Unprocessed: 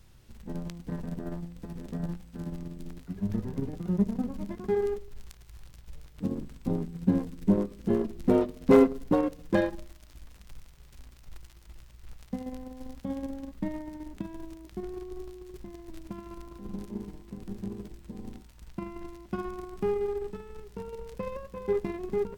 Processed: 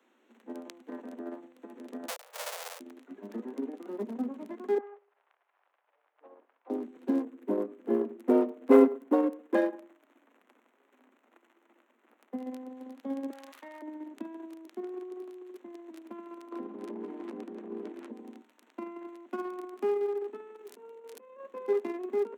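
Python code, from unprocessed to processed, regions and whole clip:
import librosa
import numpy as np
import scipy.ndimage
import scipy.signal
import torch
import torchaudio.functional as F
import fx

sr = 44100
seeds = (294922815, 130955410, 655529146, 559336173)

y = fx.chain(x, sr, fx.halfwave_hold(),
    fx.steep_highpass(hz=470.0, slope=72),
    fx.high_shelf(hz=4000.0, db=8.5), at=(2.08, 2.8))
y = fx.chain(y, sr, fx.highpass(hz=650.0, slope=24),
    fx.spacing_loss(db_at_10k=45), at=(4.78, 6.7))
y = fx.chain(y, sr, fx.peak_eq(hz=4900.0, db=-10.0, octaves=1.6),
    fx.echo_single(ms=103, db=-19.5), at=(7.23, 12.4))
y = fx.chain(y, sr, fx.highpass(hz=1000.0, slope=12),
    fx.env_flatten(amount_pct=70), at=(13.3, 13.82))
y = fx.chain(y, sr, fx.lowpass(hz=2000.0, slope=6),
    fx.clip_hard(threshold_db=-29.0),
    fx.env_flatten(amount_pct=100), at=(16.52, 18.12))
y = fx.chain(y, sr, fx.high_shelf(hz=5400.0, db=7.0),
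    fx.over_compress(threshold_db=-47.0, ratio=-1.0), at=(20.55, 21.4))
y = fx.wiener(y, sr, points=9)
y = scipy.signal.sosfilt(scipy.signal.butter(16, 230.0, 'highpass', fs=sr, output='sos'), y)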